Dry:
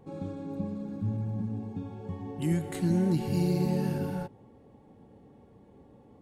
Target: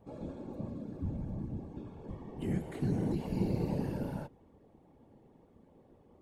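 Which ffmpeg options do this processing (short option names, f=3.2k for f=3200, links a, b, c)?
-filter_complex "[0:a]afftfilt=real='hypot(re,im)*cos(2*PI*random(0))':imag='hypot(re,im)*sin(2*PI*random(1))':win_size=512:overlap=0.75,acrossover=split=3200[a][b];[b]acompressor=threshold=-60dB:ratio=4:attack=1:release=60[c];[a][c]amix=inputs=2:normalize=0"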